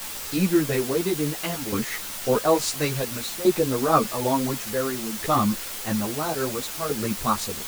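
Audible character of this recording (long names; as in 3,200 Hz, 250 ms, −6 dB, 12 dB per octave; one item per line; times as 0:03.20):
tremolo saw down 0.58 Hz, depth 75%
a quantiser's noise floor 6 bits, dither triangular
a shimmering, thickened sound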